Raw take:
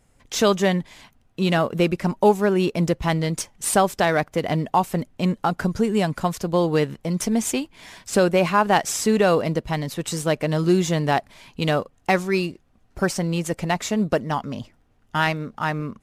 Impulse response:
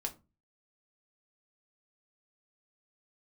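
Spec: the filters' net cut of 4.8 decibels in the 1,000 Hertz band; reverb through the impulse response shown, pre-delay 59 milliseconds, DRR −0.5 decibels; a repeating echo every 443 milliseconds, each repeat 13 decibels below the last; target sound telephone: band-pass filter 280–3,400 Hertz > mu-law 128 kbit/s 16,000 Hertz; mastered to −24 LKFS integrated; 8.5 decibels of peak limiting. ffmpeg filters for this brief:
-filter_complex "[0:a]equalizer=frequency=1000:width_type=o:gain=-6.5,alimiter=limit=-15.5dB:level=0:latency=1,aecho=1:1:443|886|1329:0.224|0.0493|0.0108,asplit=2[link_01][link_02];[1:a]atrim=start_sample=2205,adelay=59[link_03];[link_02][link_03]afir=irnorm=-1:irlink=0,volume=0dB[link_04];[link_01][link_04]amix=inputs=2:normalize=0,highpass=280,lowpass=3400,volume=3dB" -ar 16000 -c:a pcm_mulaw

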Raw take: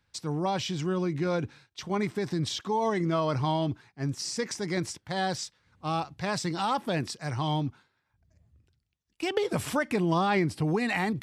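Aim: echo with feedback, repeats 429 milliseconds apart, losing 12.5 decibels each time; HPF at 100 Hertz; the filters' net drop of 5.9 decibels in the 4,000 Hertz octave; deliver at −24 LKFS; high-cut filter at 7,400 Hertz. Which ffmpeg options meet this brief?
ffmpeg -i in.wav -af "highpass=100,lowpass=7400,equalizer=frequency=4000:width_type=o:gain=-7.5,aecho=1:1:429|858|1287:0.237|0.0569|0.0137,volume=6.5dB" out.wav

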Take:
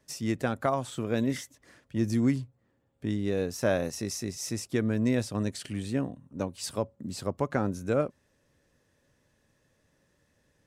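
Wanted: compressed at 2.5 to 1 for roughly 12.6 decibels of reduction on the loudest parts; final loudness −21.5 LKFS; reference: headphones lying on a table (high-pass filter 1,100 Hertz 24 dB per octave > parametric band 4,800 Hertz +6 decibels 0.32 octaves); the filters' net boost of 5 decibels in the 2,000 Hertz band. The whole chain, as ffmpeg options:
ffmpeg -i in.wav -af "equalizer=frequency=2000:width_type=o:gain=6.5,acompressor=threshold=-41dB:ratio=2.5,highpass=frequency=1100:width=0.5412,highpass=frequency=1100:width=1.3066,equalizer=frequency=4800:width_type=o:width=0.32:gain=6,volume=24dB" out.wav

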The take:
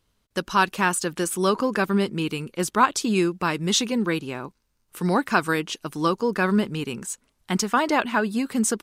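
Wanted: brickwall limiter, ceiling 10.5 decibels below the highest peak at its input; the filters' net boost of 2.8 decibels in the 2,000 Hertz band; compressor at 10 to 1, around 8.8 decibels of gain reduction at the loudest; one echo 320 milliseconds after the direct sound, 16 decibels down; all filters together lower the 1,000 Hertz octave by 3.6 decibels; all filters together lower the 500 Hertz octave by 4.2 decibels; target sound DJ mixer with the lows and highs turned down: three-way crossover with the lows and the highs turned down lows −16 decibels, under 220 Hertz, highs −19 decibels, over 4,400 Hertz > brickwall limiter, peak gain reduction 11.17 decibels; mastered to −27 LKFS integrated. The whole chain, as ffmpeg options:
ffmpeg -i in.wav -filter_complex "[0:a]equalizer=frequency=500:width_type=o:gain=-4,equalizer=frequency=1000:width_type=o:gain=-5.5,equalizer=frequency=2000:width_type=o:gain=7,acompressor=threshold=-24dB:ratio=10,alimiter=limit=-21.5dB:level=0:latency=1,acrossover=split=220 4400:gain=0.158 1 0.112[link_01][link_02][link_03];[link_01][link_02][link_03]amix=inputs=3:normalize=0,aecho=1:1:320:0.158,volume=12.5dB,alimiter=limit=-17dB:level=0:latency=1" out.wav

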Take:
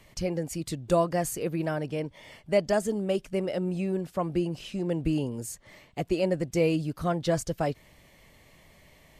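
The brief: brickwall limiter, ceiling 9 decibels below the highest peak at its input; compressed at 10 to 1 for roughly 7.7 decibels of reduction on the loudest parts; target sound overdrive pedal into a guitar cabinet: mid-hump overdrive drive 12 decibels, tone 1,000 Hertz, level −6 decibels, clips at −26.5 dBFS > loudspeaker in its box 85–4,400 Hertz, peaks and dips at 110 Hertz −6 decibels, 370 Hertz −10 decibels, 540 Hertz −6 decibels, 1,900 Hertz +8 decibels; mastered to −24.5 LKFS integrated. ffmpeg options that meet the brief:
ffmpeg -i in.wav -filter_complex "[0:a]acompressor=threshold=-26dB:ratio=10,alimiter=level_in=2.5dB:limit=-24dB:level=0:latency=1,volume=-2.5dB,asplit=2[link_01][link_02];[link_02]highpass=frequency=720:poles=1,volume=12dB,asoftclip=type=tanh:threshold=-26.5dB[link_03];[link_01][link_03]amix=inputs=2:normalize=0,lowpass=frequency=1000:poles=1,volume=-6dB,highpass=85,equalizer=frequency=110:width_type=q:width=4:gain=-6,equalizer=frequency=370:width_type=q:width=4:gain=-10,equalizer=frequency=540:width_type=q:width=4:gain=-6,equalizer=frequency=1900:width_type=q:width=4:gain=8,lowpass=frequency=4400:width=0.5412,lowpass=frequency=4400:width=1.3066,volume=16.5dB" out.wav

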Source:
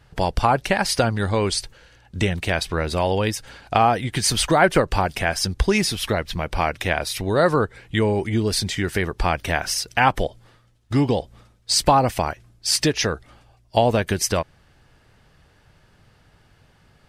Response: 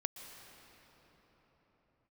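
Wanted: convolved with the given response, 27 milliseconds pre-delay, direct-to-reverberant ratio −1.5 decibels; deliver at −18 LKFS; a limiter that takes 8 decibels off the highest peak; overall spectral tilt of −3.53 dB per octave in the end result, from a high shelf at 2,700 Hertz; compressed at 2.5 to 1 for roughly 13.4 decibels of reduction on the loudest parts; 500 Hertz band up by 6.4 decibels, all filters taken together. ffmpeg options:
-filter_complex "[0:a]equalizer=frequency=500:width_type=o:gain=7.5,highshelf=frequency=2700:gain=8,acompressor=threshold=-28dB:ratio=2.5,alimiter=limit=-16.5dB:level=0:latency=1,asplit=2[link_01][link_02];[1:a]atrim=start_sample=2205,adelay=27[link_03];[link_02][link_03]afir=irnorm=-1:irlink=0,volume=2dB[link_04];[link_01][link_04]amix=inputs=2:normalize=0,volume=7dB"

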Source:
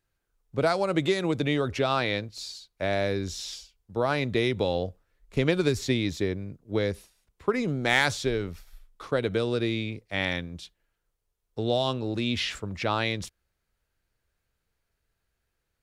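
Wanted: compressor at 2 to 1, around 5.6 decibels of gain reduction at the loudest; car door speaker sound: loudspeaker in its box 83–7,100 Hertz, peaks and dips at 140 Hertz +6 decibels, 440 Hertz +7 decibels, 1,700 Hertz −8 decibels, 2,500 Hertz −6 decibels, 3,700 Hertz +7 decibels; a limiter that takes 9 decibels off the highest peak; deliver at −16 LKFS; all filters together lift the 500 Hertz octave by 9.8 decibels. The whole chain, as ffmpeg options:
ffmpeg -i in.wav -af "equalizer=frequency=500:width_type=o:gain=7,acompressor=threshold=-26dB:ratio=2,alimiter=limit=-21dB:level=0:latency=1,highpass=83,equalizer=frequency=140:width_type=q:width=4:gain=6,equalizer=frequency=440:width_type=q:width=4:gain=7,equalizer=frequency=1700:width_type=q:width=4:gain=-8,equalizer=frequency=2500:width_type=q:width=4:gain=-6,equalizer=frequency=3700:width_type=q:width=4:gain=7,lowpass=frequency=7100:width=0.5412,lowpass=frequency=7100:width=1.3066,volume=13.5dB" out.wav

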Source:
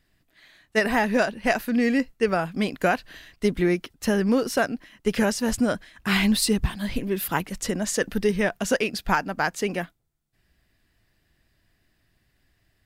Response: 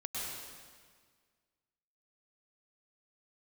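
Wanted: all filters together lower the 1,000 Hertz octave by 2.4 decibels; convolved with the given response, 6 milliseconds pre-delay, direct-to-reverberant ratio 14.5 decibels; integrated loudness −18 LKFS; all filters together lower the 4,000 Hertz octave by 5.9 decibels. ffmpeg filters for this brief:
-filter_complex "[0:a]equalizer=frequency=1000:width_type=o:gain=-3,equalizer=frequency=4000:width_type=o:gain=-8,asplit=2[link_01][link_02];[1:a]atrim=start_sample=2205,adelay=6[link_03];[link_02][link_03]afir=irnorm=-1:irlink=0,volume=-17dB[link_04];[link_01][link_04]amix=inputs=2:normalize=0,volume=7.5dB"

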